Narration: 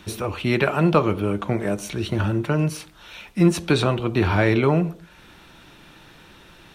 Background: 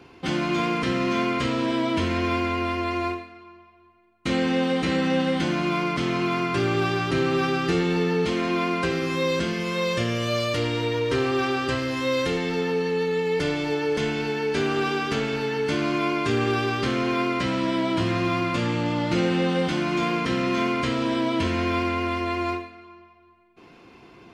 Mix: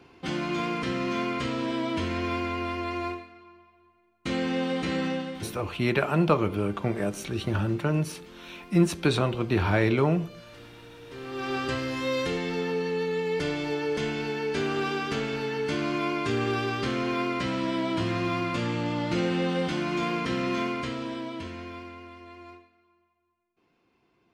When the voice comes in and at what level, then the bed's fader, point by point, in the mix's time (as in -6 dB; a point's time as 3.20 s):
5.35 s, -4.5 dB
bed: 5.06 s -5 dB
5.68 s -23.5 dB
11.02 s -23.5 dB
11.55 s -4 dB
20.53 s -4 dB
22.14 s -20 dB